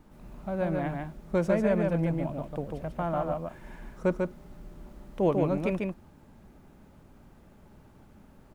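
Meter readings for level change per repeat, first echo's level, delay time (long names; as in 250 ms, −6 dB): repeats not evenly spaced, −3.5 dB, 145 ms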